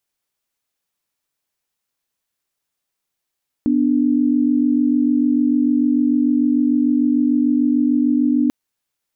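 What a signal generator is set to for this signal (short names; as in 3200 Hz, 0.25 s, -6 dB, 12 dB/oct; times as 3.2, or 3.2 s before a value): chord B3/D4 sine, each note -16 dBFS 4.84 s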